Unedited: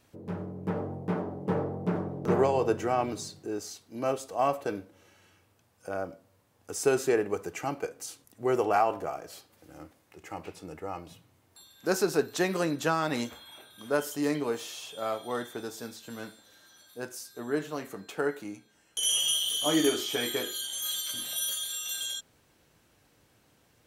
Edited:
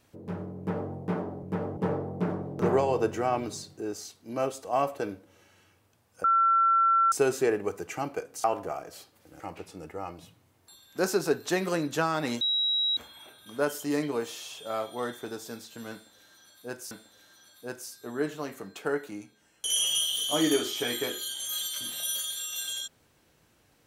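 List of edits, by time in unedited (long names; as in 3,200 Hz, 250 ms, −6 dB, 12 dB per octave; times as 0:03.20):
0:00.58–0:00.92: duplicate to 0:01.43
0:05.90–0:06.78: beep over 1,350 Hz −19 dBFS
0:08.10–0:08.81: remove
0:09.77–0:10.28: remove
0:13.29: insert tone 3,860 Hz −23.5 dBFS 0.56 s
0:16.24–0:17.23: repeat, 2 plays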